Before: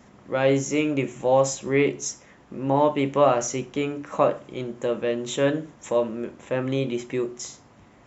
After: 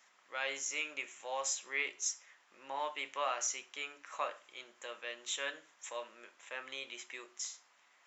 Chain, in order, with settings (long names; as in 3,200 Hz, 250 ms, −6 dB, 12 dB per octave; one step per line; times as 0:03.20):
high-pass filter 1,500 Hz 12 dB per octave
level −5 dB